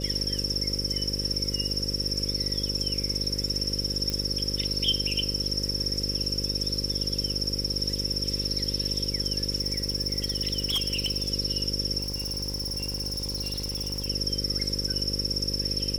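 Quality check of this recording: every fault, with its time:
buzz 50 Hz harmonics 11 -33 dBFS
4.10 s: pop -15 dBFS
9.60–11.30 s: clipped -22 dBFS
12.00–14.08 s: clipped -27.5 dBFS

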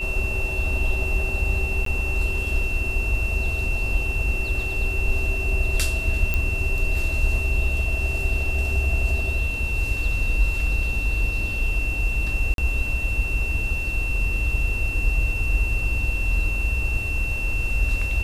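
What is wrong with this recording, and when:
whine 2.7 kHz -27 dBFS
1.85–1.86 s: dropout
6.34 s: pop -10 dBFS
12.54–12.58 s: dropout 42 ms

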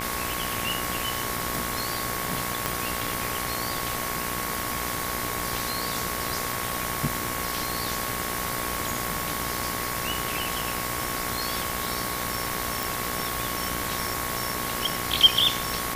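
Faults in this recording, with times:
buzz 60 Hz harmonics 38 -34 dBFS
whine 1.1 kHz -35 dBFS
2.66 s: pop -9 dBFS
12.83 s: pop

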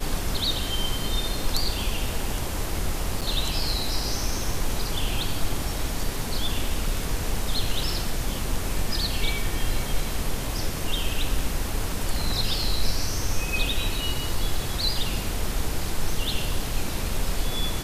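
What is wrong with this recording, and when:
3.21–3.22 s: dropout 6.8 ms

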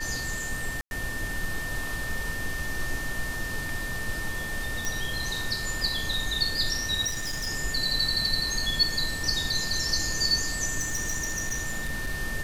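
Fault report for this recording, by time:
whine 1.8 kHz -33 dBFS
0.81–0.91 s: dropout 101 ms
4.85 s: pop
7.06–7.48 s: clipped -28 dBFS
10.79–12.15 s: clipped -25 dBFS

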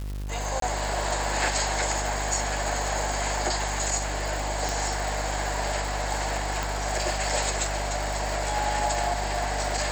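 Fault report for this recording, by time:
buzz 50 Hz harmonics 39 -32 dBFS
crackle 350 per s -33 dBFS
0.60–0.62 s: dropout 23 ms
4.69 s: pop
6.63 s: pop

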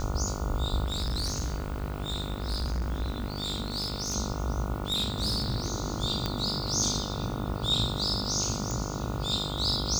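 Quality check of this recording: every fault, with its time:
buzz 50 Hz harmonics 29 -35 dBFS
0.85–4.16 s: clipped -26.5 dBFS
4.88–5.72 s: clipped -24.5 dBFS
6.26 s: pop -14 dBFS
8.71 s: pop

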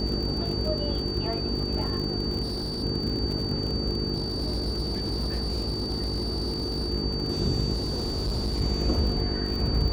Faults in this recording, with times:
buzz 50 Hz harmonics 9 -32 dBFS
crackle 50 per s -31 dBFS
whine 4.6 kHz -32 dBFS
2.42–2.84 s: clipped -26.5 dBFS
4.14–6.90 s: clipped -24 dBFS
7.73–8.62 s: clipped -24 dBFS

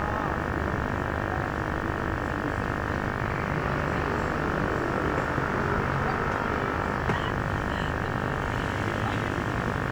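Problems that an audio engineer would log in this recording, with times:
buzz 50 Hz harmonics 37 -32 dBFS

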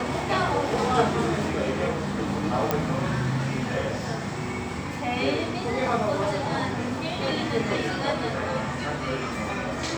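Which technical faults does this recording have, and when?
2.71 s: pop -8 dBFS

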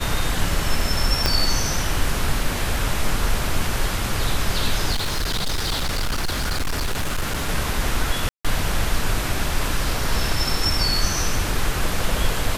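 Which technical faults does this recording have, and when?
1.26 s: pop -2 dBFS
4.92–7.49 s: clipped -19 dBFS
8.29–8.45 s: dropout 156 ms

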